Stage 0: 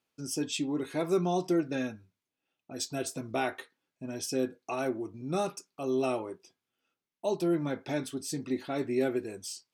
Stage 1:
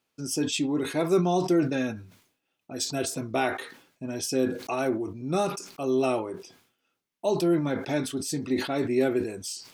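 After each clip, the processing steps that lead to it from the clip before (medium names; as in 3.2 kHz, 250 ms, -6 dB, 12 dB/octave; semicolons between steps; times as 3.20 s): decay stretcher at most 100 dB/s; trim +4.5 dB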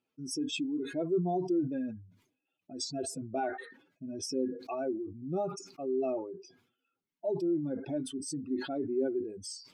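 spectral contrast enhancement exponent 2.1; trim -6.5 dB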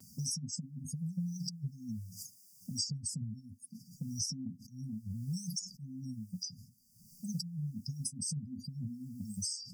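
brick-wall FIR band-stop 230–4600 Hz; vibrato 0.53 Hz 23 cents; three bands compressed up and down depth 100%; trim +7 dB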